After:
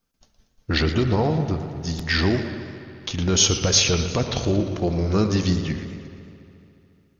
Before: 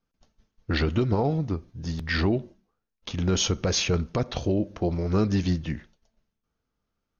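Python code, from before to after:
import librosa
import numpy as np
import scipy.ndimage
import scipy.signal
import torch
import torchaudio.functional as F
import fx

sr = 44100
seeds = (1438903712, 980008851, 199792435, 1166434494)

p1 = fx.high_shelf(x, sr, hz=4100.0, db=10.5)
p2 = p1 + fx.echo_wet_lowpass(p1, sr, ms=71, feedback_pct=84, hz=2500.0, wet_db=-14, dry=0)
p3 = fx.echo_warbled(p2, sr, ms=116, feedback_pct=57, rate_hz=2.8, cents=126, wet_db=-12.0)
y = p3 * 10.0 ** (2.5 / 20.0)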